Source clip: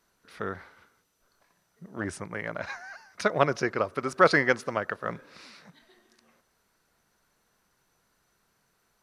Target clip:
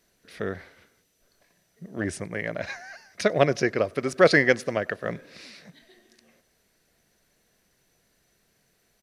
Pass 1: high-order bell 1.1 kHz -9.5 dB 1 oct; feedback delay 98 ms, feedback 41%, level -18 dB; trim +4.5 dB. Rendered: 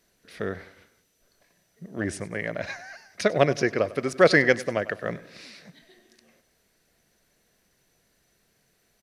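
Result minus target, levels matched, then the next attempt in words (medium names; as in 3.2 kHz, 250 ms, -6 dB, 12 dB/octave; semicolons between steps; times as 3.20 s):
echo-to-direct +12 dB
high-order bell 1.1 kHz -9.5 dB 1 oct; feedback delay 98 ms, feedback 41%, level -30 dB; trim +4.5 dB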